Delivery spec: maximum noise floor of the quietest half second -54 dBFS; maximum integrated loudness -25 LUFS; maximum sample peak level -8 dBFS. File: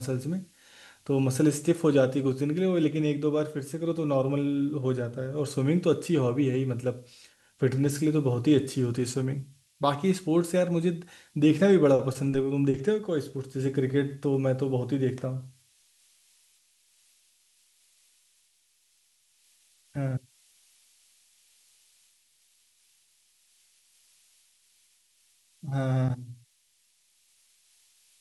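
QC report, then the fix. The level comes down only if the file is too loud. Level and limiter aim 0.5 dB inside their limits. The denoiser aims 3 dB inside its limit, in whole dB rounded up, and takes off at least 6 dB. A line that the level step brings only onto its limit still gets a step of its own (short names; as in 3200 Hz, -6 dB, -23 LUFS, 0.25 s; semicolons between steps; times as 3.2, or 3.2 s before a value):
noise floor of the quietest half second -68 dBFS: OK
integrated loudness -27.0 LUFS: OK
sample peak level -10.0 dBFS: OK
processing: none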